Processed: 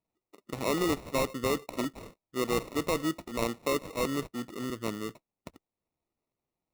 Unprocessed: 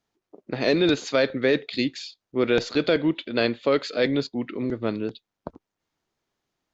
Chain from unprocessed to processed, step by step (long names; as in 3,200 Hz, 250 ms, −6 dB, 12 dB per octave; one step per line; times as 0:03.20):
sample-rate reduction 1,600 Hz, jitter 0%
level −8 dB